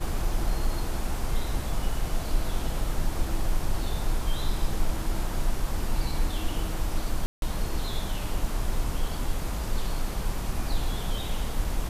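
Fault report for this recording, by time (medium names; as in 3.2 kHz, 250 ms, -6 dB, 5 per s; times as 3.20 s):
7.26–7.42 s: dropout 162 ms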